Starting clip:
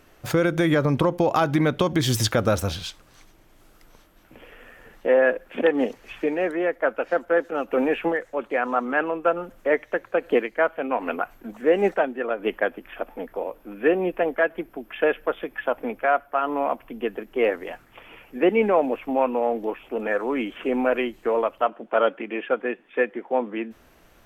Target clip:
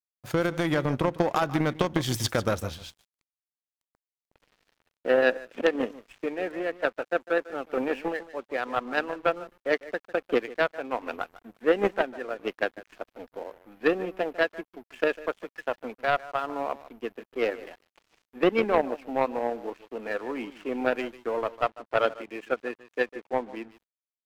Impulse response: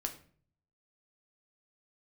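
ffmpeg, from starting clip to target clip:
-af "aecho=1:1:150:0.224,aeval=exprs='0.422*(cos(1*acos(clip(val(0)/0.422,-1,1)))-cos(1*PI/2))+0.0841*(cos(3*acos(clip(val(0)/0.422,-1,1)))-cos(3*PI/2))':c=same,aeval=exprs='sgn(val(0))*max(abs(val(0))-0.00335,0)':c=same"

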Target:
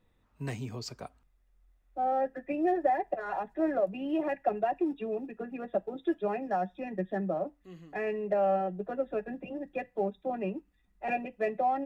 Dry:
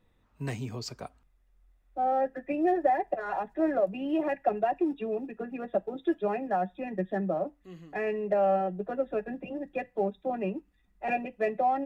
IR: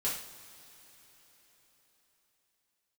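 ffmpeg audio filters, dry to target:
-filter_complex "[0:a]asettb=1/sr,asplit=3[a][b][c];[a]atrim=end=6.424[d];[b]atrim=start=6.42:end=6.88,asetpts=PTS-STARTPTS,afade=t=in:d=0.004:c=qsin,afade=t=out:st=0.456:d=0.004:c=qsin,equalizer=f=5.5k:t=o:w=0.44:g=9[e];[c]atrim=start=6.876[f];[d][e]acrossfade=d=0.004:c1=hsin:c2=qsin[g];[g][f]acrossfade=d=0.004:c1=qsin:c2=hsin,volume=-2dB"

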